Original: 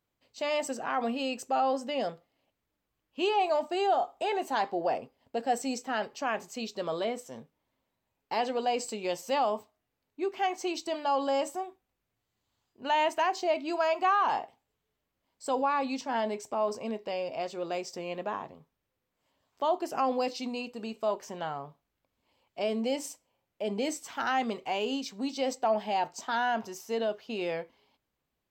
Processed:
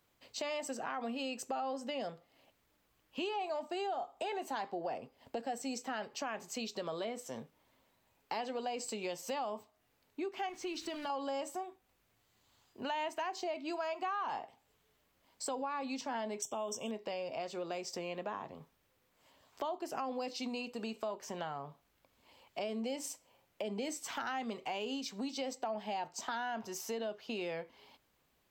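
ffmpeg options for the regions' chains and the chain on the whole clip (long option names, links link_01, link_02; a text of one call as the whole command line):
ffmpeg -i in.wav -filter_complex "[0:a]asettb=1/sr,asplit=3[link_01][link_02][link_03];[link_01]atrim=end=10.494[link_04];[link_02]atrim=start=10.49:end=11.1,asetpts=PTS-STARTPTS,afade=type=in:duration=0.004:curve=qsin,afade=type=out:start_time=0.606:duration=0.004:curve=qsin,aeval=exprs='val(0)+0.5*0.00708*sgn(val(0))':channel_layout=same,lowpass=frequency=2700:poles=1,equalizer=frequency=710:width=1.1:gain=-10.5[link_05];[link_03]atrim=start=11.096[link_06];[link_04][link_05]acrossfade=duration=0.004:curve1=hsin:curve2=qsin[link_07];[link_07][link_06]acrossfade=duration=0.004:curve1=qsin:curve2=hsin,asettb=1/sr,asplit=3[link_08][link_09][link_10];[link_08]atrim=end=16.424[link_11];[link_09]atrim=start=16.42:end=16.91,asetpts=PTS-STARTPTS,afade=type=in:duration=0.004:curve=qsin,afade=type=out:start_time=0.486:duration=0.004:curve=qsin,asuperstop=centerf=4400:order=20:qfactor=2.4,highshelf=frequency=2800:width_type=q:width=3:gain=11[link_12];[link_10]atrim=start=16.906[link_13];[link_11][link_12]acrossfade=duration=0.004:curve1=hsin:curve2=qsin[link_14];[link_14][link_13]acrossfade=duration=0.004:curve1=qsin:curve2=hsin,acrossover=split=260[link_15][link_16];[link_16]acompressor=threshold=-42dB:ratio=1.5[link_17];[link_15][link_17]amix=inputs=2:normalize=0,lowshelf=frequency=460:gain=-4.5,acompressor=threshold=-52dB:ratio=2.5,volume=10dB" out.wav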